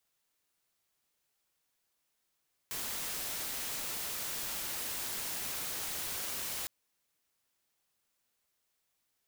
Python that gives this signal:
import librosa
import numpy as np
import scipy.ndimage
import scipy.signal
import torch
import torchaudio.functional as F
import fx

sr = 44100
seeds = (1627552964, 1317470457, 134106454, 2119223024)

y = fx.noise_colour(sr, seeds[0], length_s=3.96, colour='white', level_db=-38.0)